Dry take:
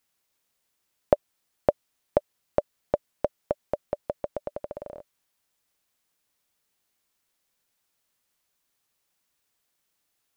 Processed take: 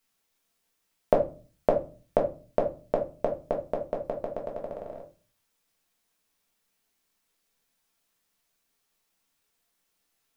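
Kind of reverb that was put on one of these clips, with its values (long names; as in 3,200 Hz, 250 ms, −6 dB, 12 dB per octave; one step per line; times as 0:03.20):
rectangular room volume 190 cubic metres, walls furnished, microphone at 1.6 metres
level −2 dB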